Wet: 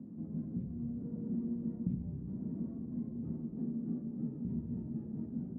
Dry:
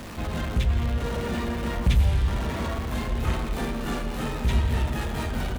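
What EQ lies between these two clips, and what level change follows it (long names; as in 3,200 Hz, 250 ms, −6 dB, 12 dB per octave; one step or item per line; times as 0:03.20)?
flat-topped band-pass 210 Hz, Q 1.5
−4.0 dB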